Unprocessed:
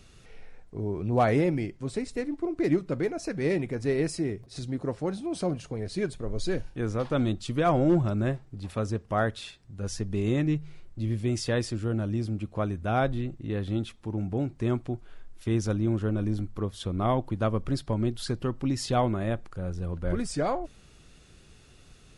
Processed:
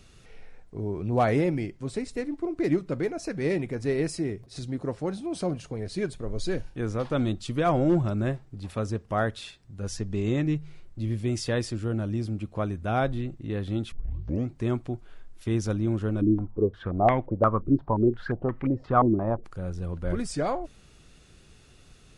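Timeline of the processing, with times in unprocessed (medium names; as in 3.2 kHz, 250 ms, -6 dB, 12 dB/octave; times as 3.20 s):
9.97–10.45 s: steep low-pass 8.6 kHz 72 dB/octave
13.92 s: tape start 0.58 s
16.21–19.44 s: step-sequenced low-pass 5.7 Hz 320–2100 Hz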